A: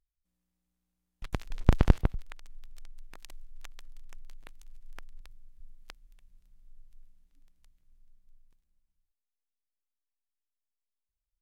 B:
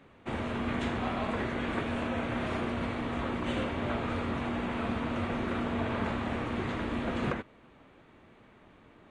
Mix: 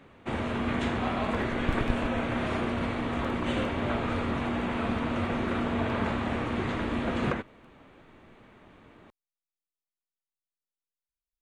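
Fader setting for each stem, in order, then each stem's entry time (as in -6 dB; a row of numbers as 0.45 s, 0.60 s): -9.5 dB, +3.0 dB; 0.00 s, 0.00 s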